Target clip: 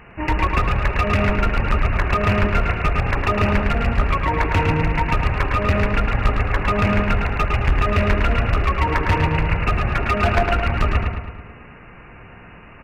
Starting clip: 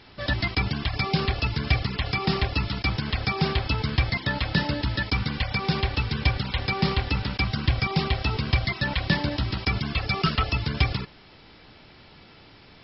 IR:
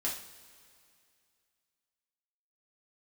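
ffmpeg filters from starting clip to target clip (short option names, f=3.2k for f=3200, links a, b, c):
-filter_complex "[0:a]asetrate=23361,aresample=44100,atempo=1.88775,asoftclip=type=hard:threshold=-20.5dB,asplit=2[a][b];[b]adelay=108,lowpass=f=4.1k:p=1,volume=-3.5dB,asplit=2[c][d];[d]adelay=108,lowpass=f=4.1k:p=1,volume=0.55,asplit=2[e][f];[f]adelay=108,lowpass=f=4.1k:p=1,volume=0.55,asplit=2[g][h];[h]adelay=108,lowpass=f=4.1k:p=1,volume=0.55,asplit=2[i][j];[j]adelay=108,lowpass=f=4.1k:p=1,volume=0.55,asplit=2[k][l];[l]adelay=108,lowpass=f=4.1k:p=1,volume=0.55,asplit=2[m][n];[n]adelay=108,lowpass=f=4.1k:p=1,volume=0.55,asplit=2[o][p];[p]adelay=108,lowpass=f=4.1k:p=1,volume=0.55[q];[a][c][e][g][i][k][m][o][q]amix=inputs=9:normalize=0,volume=7.5dB"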